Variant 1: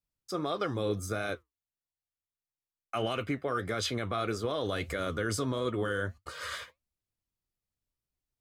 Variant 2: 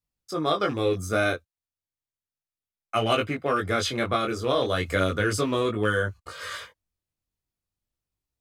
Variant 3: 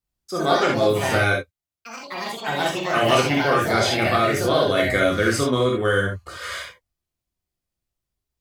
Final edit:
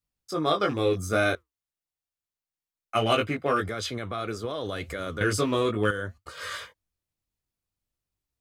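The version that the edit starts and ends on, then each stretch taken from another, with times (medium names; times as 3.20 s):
2
1.35–2.95 s: from 1
3.69–5.21 s: from 1
5.91–6.37 s: from 1
not used: 3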